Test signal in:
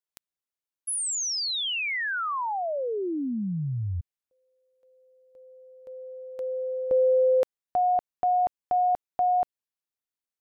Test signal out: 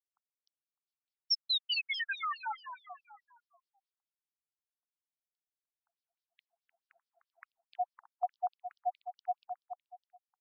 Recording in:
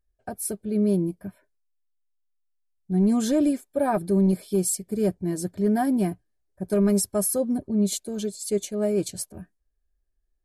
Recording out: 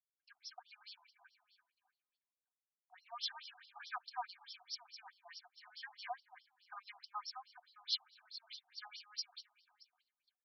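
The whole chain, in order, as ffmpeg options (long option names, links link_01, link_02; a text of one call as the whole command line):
ffmpeg -i in.wav -filter_complex "[0:a]highpass=frequency=680:poles=1,agate=range=-12dB:threshold=-54dB:ratio=16:release=99:detection=peak,lowpass=frequency=5600:width_type=q:width=2.2,asplit=2[link_01][link_02];[link_02]aecho=0:1:303|606|909|1212:0.355|0.117|0.0386|0.0128[link_03];[link_01][link_03]amix=inputs=2:normalize=0,afftfilt=real='re*between(b*sr/1024,930*pow(4200/930,0.5+0.5*sin(2*PI*4.7*pts/sr))/1.41,930*pow(4200/930,0.5+0.5*sin(2*PI*4.7*pts/sr))*1.41)':imag='im*between(b*sr/1024,930*pow(4200/930,0.5+0.5*sin(2*PI*4.7*pts/sr))/1.41,930*pow(4200/930,0.5+0.5*sin(2*PI*4.7*pts/sr))*1.41)':win_size=1024:overlap=0.75,volume=-3.5dB" out.wav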